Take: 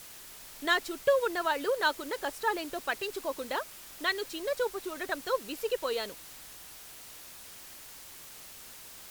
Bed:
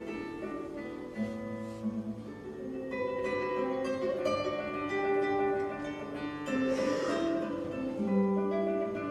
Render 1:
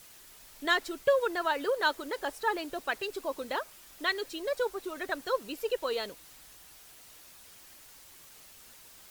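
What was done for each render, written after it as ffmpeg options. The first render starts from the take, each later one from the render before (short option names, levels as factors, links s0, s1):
-af "afftdn=nr=6:nf=-49"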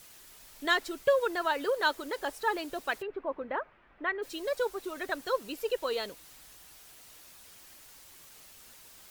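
-filter_complex "[0:a]asplit=3[s0][s1][s2];[s0]afade=t=out:st=3.01:d=0.02[s3];[s1]lowpass=f=2100:w=0.5412,lowpass=f=2100:w=1.3066,afade=t=in:st=3.01:d=0.02,afade=t=out:st=4.22:d=0.02[s4];[s2]afade=t=in:st=4.22:d=0.02[s5];[s3][s4][s5]amix=inputs=3:normalize=0"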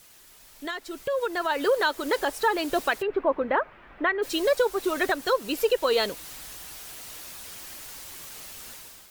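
-af "alimiter=level_in=1.12:limit=0.0631:level=0:latency=1:release=262,volume=0.891,dynaudnorm=f=870:g=3:m=3.98"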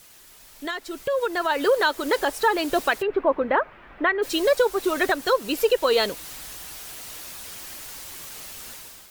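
-af "volume=1.41"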